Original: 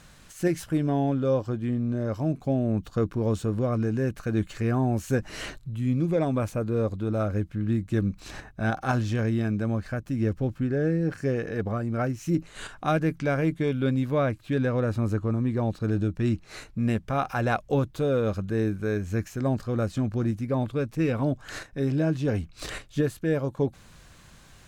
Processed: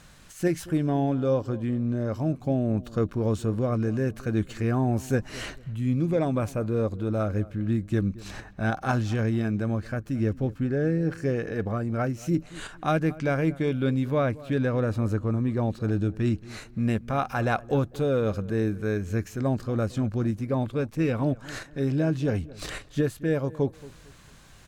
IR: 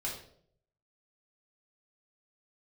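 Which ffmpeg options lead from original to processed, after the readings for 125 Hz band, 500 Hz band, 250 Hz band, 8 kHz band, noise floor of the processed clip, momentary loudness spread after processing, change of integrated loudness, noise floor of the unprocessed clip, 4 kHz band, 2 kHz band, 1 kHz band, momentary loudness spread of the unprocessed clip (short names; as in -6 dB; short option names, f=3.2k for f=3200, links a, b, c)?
0.0 dB, 0.0 dB, 0.0 dB, 0.0 dB, -50 dBFS, 5 LU, 0.0 dB, -52 dBFS, 0.0 dB, 0.0 dB, 0.0 dB, 5 LU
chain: -filter_complex "[0:a]asplit=2[a][b];[b]adelay=225,lowpass=f=1.4k:p=1,volume=-19dB,asplit=2[c][d];[d]adelay=225,lowpass=f=1.4k:p=1,volume=0.31,asplit=2[e][f];[f]adelay=225,lowpass=f=1.4k:p=1,volume=0.31[g];[a][c][e][g]amix=inputs=4:normalize=0"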